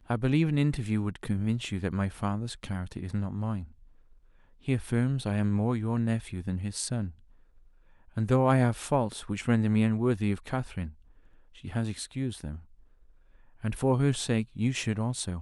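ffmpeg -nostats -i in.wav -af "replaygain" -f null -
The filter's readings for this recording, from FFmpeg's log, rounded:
track_gain = +9.4 dB
track_peak = 0.201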